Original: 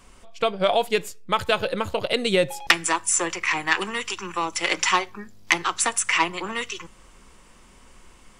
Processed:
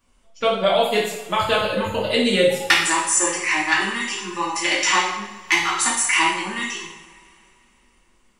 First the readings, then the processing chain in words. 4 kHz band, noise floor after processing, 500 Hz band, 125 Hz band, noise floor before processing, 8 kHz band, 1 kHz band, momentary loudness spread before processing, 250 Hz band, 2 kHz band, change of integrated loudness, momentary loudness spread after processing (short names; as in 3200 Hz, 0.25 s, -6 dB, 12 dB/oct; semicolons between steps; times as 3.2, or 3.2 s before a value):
+4.0 dB, -59 dBFS, +3.5 dB, +3.0 dB, -52 dBFS, +4.0 dB, +3.0 dB, 9 LU, +5.0 dB, +4.0 dB, +3.5 dB, 9 LU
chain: spectral noise reduction 15 dB; two-slope reverb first 0.76 s, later 3.2 s, from -22 dB, DRR -6 dB; gain -3 dB